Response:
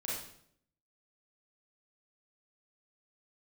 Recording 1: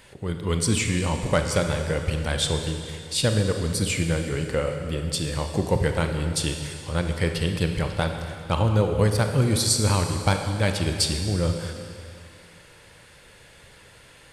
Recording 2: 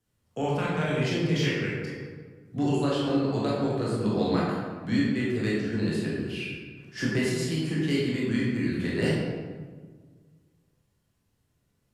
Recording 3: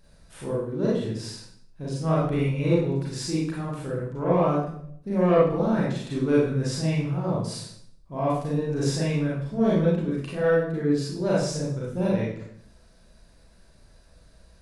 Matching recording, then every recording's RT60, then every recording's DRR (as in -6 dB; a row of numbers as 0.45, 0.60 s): 3; 2.5, 1.6, 0.65 s; 5.0, -6.0, -7.0 dB